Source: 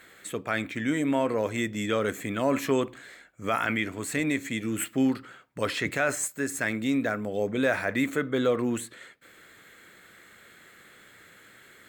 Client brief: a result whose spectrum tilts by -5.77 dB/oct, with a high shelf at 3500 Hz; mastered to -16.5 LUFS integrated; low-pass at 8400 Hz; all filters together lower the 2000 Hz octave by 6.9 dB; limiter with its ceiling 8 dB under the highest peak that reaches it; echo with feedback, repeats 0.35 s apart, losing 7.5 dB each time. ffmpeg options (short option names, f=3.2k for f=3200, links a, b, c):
-af "lowpass=8.4k,equalizer=f=2k:t=o:g=-7,highshelf=f=3.5k:g=-7.5,alimiter=limit=-21.5dB:level=0:latency=1,aecho=1:1:350|700|1050|1400|1750:0.422|0.177|0.0744|0.0312|0.0131,volume=15.5dB"